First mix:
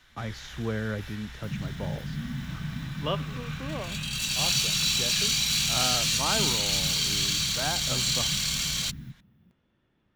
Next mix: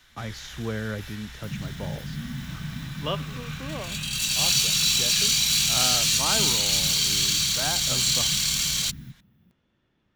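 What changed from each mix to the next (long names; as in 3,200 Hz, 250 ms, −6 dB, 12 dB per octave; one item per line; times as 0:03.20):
master: add high-shelf EQ 4,200 Hz +7 dB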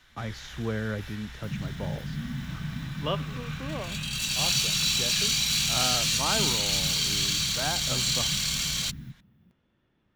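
master: add high-shelf EQ 4,200 Hz −7 dB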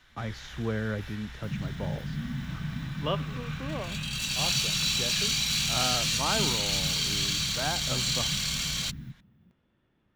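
master: add parametric band 15,000 Hz −4.5 dB 1.9 octaves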